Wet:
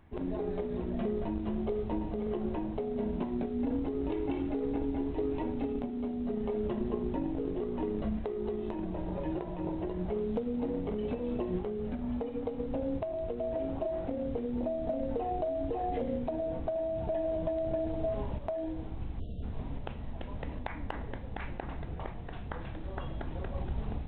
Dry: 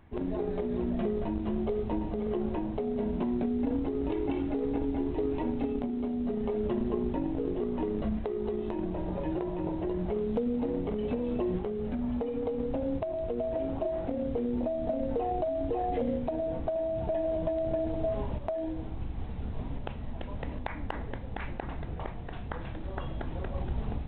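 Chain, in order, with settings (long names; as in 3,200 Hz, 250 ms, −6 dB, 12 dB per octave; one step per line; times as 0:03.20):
hum removal 119.5 Hz, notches 29
time-frequency box erased 0:19.20–0:19.43, 720–2,700 Hz
level −2 dB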